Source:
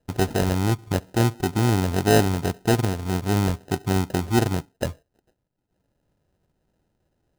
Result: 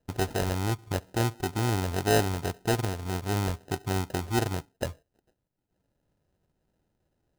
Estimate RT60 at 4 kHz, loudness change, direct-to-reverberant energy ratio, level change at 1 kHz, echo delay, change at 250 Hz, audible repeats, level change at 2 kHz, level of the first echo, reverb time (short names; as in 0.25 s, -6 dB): none, -6.5 dB, none, -4.5 dB, none, -8.5 dB, none, -4.0 dB, none, none